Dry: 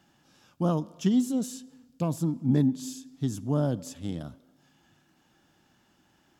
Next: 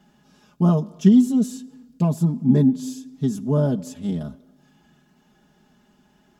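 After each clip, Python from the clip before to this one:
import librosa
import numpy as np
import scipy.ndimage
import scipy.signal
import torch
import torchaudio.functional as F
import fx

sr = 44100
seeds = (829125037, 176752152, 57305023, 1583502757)

y = fx.tilt_shelf(x, sr, db=4.0, hz=720.0)
y = y + 0.92 * np.pad(y, (int(4.8 * sr / 1000.0), 0))[:len(y)]
y = F.gain(torch.from_numpy(y), 2.5).numpy()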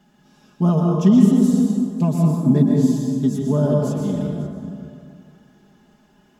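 y = x + 10.0 ** (-19.5 / 20.0) * np.pad(x, (int(544 * sr / 1000.0), 0))[:len(x)]
y = fx.rev_plate(y, sr, seeds[0], rt60_s=2.3, hf_ratio=0.4, predelay_ms=105, drr_db=-0.5)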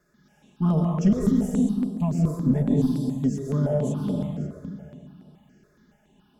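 y = fx.diode_clip(x, sr, knee_db=-8.5)
y = fx.phaser_held(y, sr, hz=7.1, low_hz=820.0, high_hz=6700.0)
y = F.gain(torch.from_numpy(y), -2.5).numpy()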